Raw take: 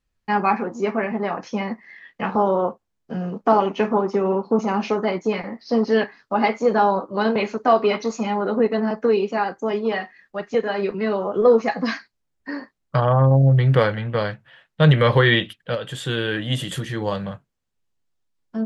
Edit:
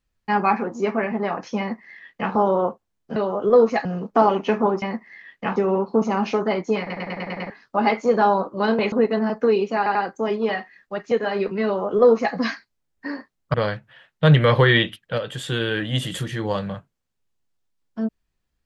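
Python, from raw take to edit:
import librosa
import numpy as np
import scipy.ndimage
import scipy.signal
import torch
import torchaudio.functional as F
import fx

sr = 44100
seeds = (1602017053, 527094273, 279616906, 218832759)

y = fx.edit(x, sr, fx.duplicate(start_s=1.59, length_s=0.74, to_s=4.13),
    fx.stutter_over(start_s=5.37, slice_s=0.1, count=7),
    fx.cut(start_s=7.49, length_s=1.04),
    fx.stutter(start_s=9.38, slice_s=0.09, count=3),
    fx.duplicate(start_s=11.08, length_s=0.69, to_s=3.16),
    fx.cut(start_s=12.97, length_s=1.14), tone=tone)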